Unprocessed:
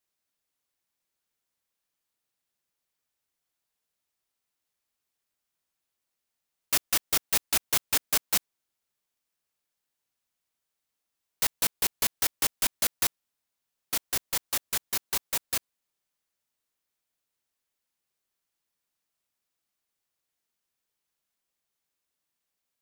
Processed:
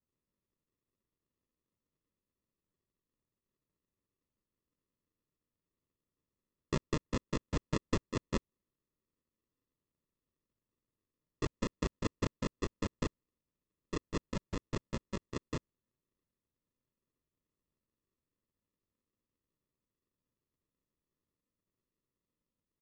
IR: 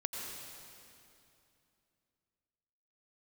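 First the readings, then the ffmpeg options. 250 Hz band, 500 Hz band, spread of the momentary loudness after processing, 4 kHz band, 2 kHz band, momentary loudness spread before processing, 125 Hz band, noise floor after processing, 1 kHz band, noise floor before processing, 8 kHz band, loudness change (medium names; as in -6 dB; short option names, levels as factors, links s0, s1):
+8.0 dB, +2.5 dB, 5 LU, -16.5 dB, -11.5 dB, 4 LU, +9.0 dB, under -85 dBFS, -6.0 dB, -85 dBFS, -22.5 dB, -12.0 dB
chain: -af "equalizer=f=3400:w=2.4:g=13,aresample=16000,acrusher=samples=21:mix=1:aa=0.000001,aresample=44100,volume=0.376"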